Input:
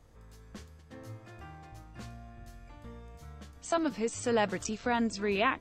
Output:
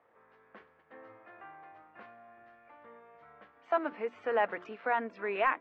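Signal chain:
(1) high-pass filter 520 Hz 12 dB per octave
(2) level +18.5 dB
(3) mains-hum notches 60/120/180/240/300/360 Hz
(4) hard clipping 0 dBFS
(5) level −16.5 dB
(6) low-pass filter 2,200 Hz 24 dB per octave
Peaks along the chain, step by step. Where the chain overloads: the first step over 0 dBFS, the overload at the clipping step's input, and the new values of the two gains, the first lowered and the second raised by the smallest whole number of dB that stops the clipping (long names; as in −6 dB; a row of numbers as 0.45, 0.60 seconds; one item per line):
−14.0, +4.5, +4.5, 0.0, −16.5, −16.5 dBFS
step 2, 4.5 dB
step 2 +13.5 dB, step 5 −11.5 dB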